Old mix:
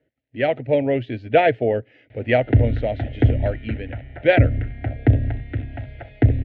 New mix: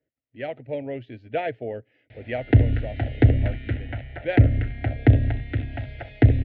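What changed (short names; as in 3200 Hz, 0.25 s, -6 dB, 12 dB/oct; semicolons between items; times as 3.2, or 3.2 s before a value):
speech -11.5 dB; background: remove LPF 2100 Hz 6 dB/oct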